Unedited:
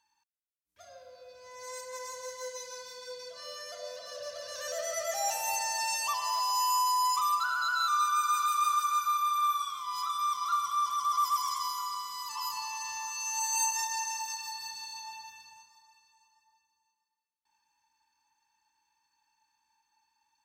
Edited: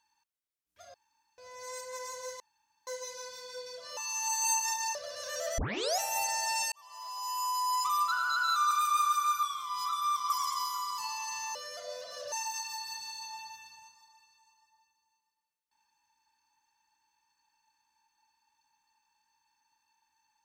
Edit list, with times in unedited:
0.94–1.38 room tone
2.4 insert room tone 0.47 s
3.5–4.27 swap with 13.08–14.06
4.9 tape start 0.41 s
6.04–7.43 fade in
8.03–8.38 cut
9.1–9.6 cut
10.47–11.34 cut
12.02–12.51 cut

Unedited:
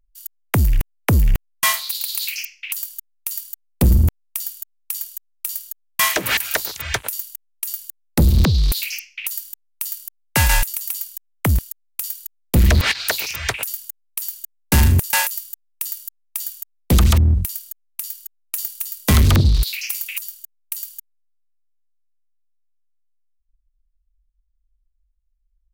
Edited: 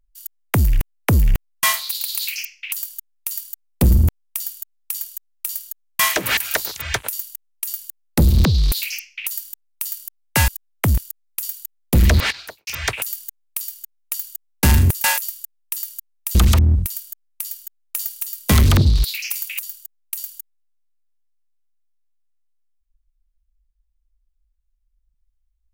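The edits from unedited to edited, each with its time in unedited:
10.48–11.09 cut
12.79–13.28 studio fade out
16.44–16.94 cut
18.04–18.56 copy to 14.23

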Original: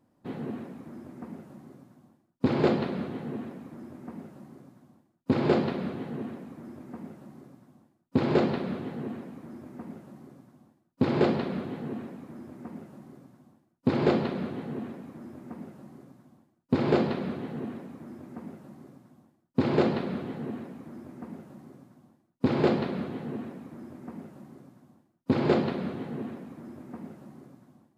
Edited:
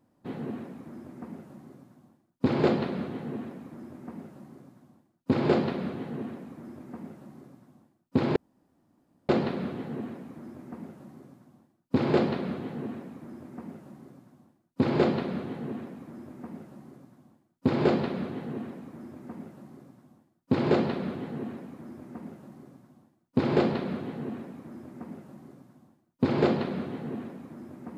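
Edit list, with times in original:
8.36 insert room tone 0.93 s

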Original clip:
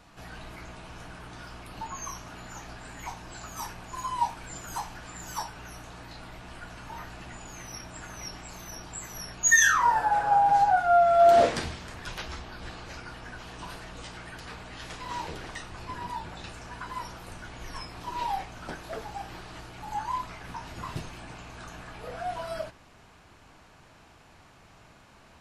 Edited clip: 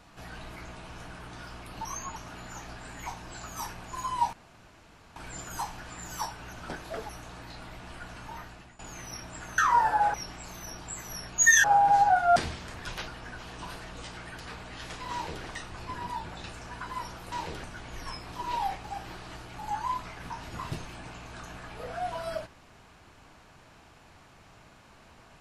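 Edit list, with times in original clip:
1.85–2.16 reverse
4.33 insert room tone 0.83 s
6.7–7.4 fade out equal-power, to -17.5 dB
9.69–10.25 move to 8.19
10.97–11.56 cut
12.28–13.08 cut
15.13–15.45 copy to 17.32
18.52–19.08 move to 5.7

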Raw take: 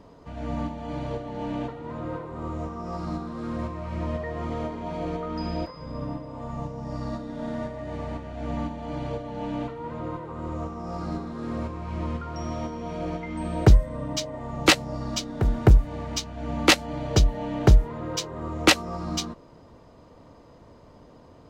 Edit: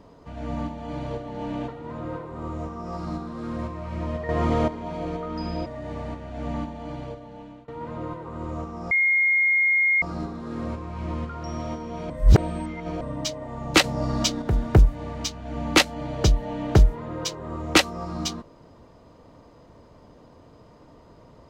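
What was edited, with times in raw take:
4.29–4.68 gain +8.5 dB
5.66–7.69 cut
8.67–9.71 fade out, to -23.5 dB
10.94 add tone 2140 Hz -17 dBFS 1.11 s
13.02–13.93 reverse
14.76–15.34 gain +6 dB

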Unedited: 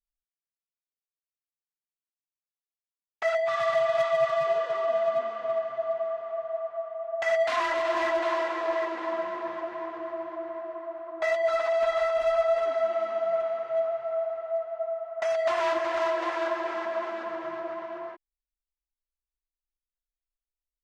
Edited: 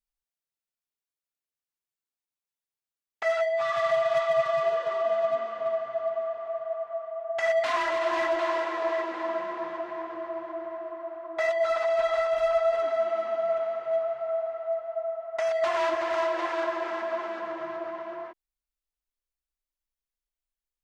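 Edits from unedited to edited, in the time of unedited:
3.23–3.56 stretch 1.5×

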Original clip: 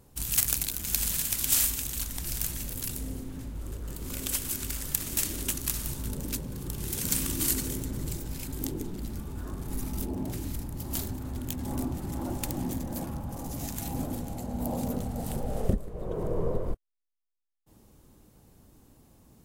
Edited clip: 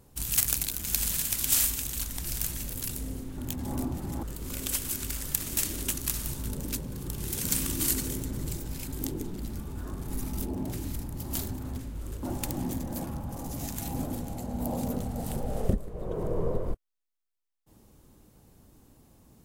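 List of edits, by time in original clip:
3.38–3.83 swap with 11.38–12.23

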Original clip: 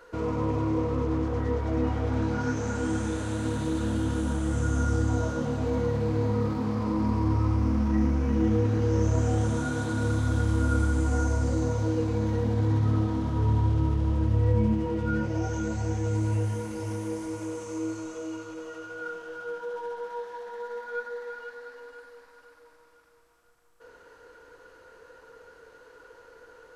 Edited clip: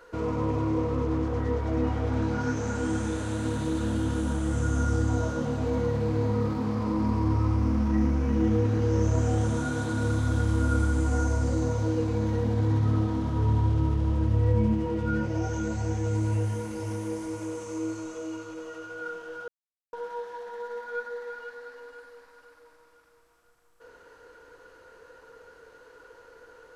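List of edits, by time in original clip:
19.48–19.93 mute

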